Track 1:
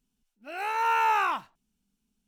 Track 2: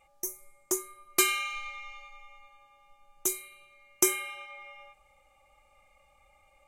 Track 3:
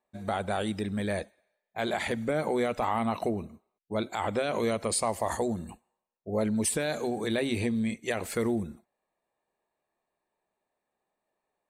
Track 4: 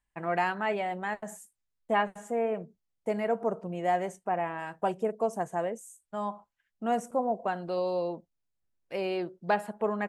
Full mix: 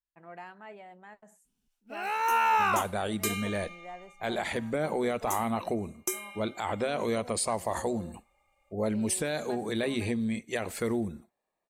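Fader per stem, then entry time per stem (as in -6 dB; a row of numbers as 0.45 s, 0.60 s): -0.5 dB, -8.0 dB, -1.5 dB, -17.0 dB; 1.45 s, 2.05 s, 2.45 s, 0.00 s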